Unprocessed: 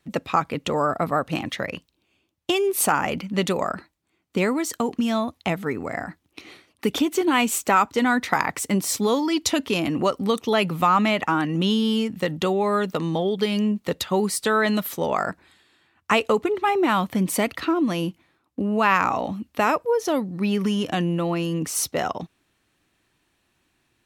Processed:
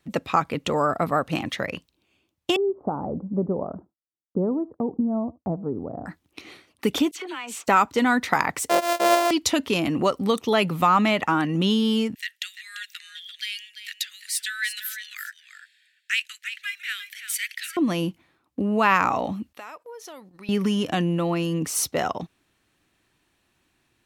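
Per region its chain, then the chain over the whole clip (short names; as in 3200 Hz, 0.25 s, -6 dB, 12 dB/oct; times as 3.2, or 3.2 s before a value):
2.56–6.06 Bessel low-pass 550 Hz, order 8 + expander -50 dBFS + echo 76 ms -23.5 dB
7.11–7.68 band-pass 2100 Hz, Q 0.52 + dispersion lows, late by 47 ms, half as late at 1900 Hz + compressor 8:1, threshold -30 dBFS
8.69–9.31 sample sorter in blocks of 128 samples + resonant high-pass 570 Hz, resonance Q 4.2
12.15–17.77 steep high-pass 1600 Hz 72 dB/oct + echo 0.342 s -10.5 dB
19.53–20.49 HPF 1100 Hz 6 dB/oct + gate -47 dBFS, range -11 dB + compressor 2.5:1, threshold -43 dBFS
whole clip: dry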